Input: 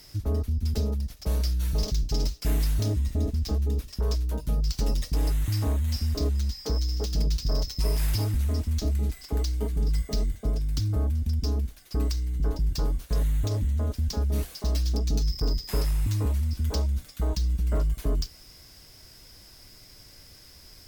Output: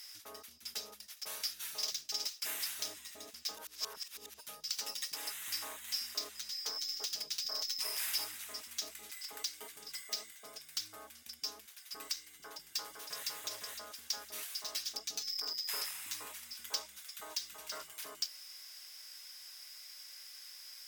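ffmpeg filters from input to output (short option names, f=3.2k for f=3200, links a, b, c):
-filter_complex "[0:a]asplit=2[a][b];[b]afade=t=in:st=12.24:d=0.01,afade=t=out:st=13.26:d=0.01,aecho=0:1:510|1020|1530|2040|2550:0.794328|0.278015|0.0973052|0.0340568|0.0119199[c];[a][c]amix=inputs=2:normalize=0,asplit=2[d][e];[e]afade=t=in:st=16.93:d=0.01,afade=t=out:st=17.54:d=0.01,aecho=0:1:330|660|990|1320:0.501187|0.150356|0.0451069|0.0135321[f];[d][f]amix=inputs=2:normalize=0,asplit=3[g][h][i];[g]atrim=end=3.572[j];[h]atrim=start=3.568:end=4.392,asetpts=PTS-STARTPTS,areverse[k];[i]atrim=start=4.388[l];[j][k]acrossfade=d=0.004:c1=hsin:c2=hsin[m];[m][l]acrossfade=d=0.004:c1=hsin:c2=hsin,highpass=1.5k,bandreject=f=4.3k:w=19,volume=1dB"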